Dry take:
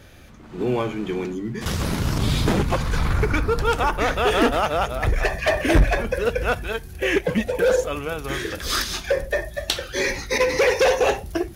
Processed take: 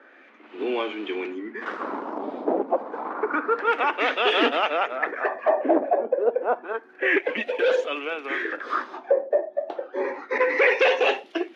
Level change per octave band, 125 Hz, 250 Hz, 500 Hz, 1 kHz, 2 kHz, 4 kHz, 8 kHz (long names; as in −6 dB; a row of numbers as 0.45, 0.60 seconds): below −30 dB, −5.0 dB, −1.0 dB, −0.5 dB, −0.5 dB, −4.0 dB, below −20 dB